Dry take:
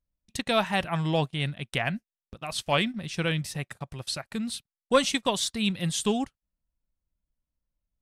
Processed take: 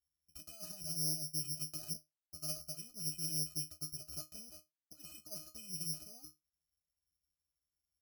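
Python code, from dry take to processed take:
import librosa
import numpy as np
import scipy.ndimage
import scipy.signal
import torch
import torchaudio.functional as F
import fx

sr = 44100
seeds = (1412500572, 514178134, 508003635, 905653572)

y = fx.over_compress(x, sr, threshold_db=-32.0, ratio=-1.0)
y = fx.cheby_harmonics(y, sr, harmonics=(3, 6, 8), levels_db=(-8, -24, -37), full_scale_db=-11.0)
y = fx.octave_resonator(y, sr, note='D#', decay_s=0.19)
y = (np.kron(scipy.signal.resample_poly(y, 1, 8), np.eye(8)[0]) * 8)[:len(y)]
y = fx.transformer_sat(y, sr, knee_hz=1900.0)
y = F.gain(torch.from_numpy(y), 5.5).numpy()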